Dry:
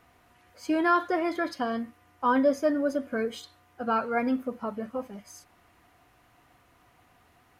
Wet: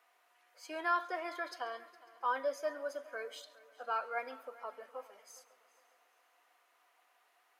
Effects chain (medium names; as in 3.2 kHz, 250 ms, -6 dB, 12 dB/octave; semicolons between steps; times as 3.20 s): Bessel high-pass 670 Hz, order 6; multi-head delay 137 ms, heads first and third, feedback 51%, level -21 dB; trim -7 dB